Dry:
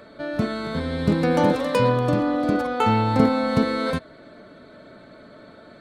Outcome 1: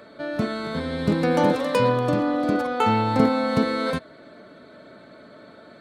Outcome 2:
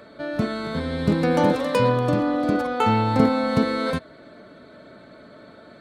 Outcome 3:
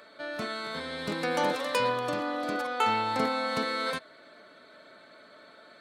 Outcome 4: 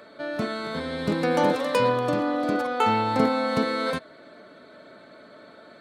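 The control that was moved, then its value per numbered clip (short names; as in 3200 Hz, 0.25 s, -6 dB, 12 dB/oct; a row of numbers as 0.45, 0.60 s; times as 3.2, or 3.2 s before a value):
HPF, cutoff: 130, 44, 1300, 370 Hz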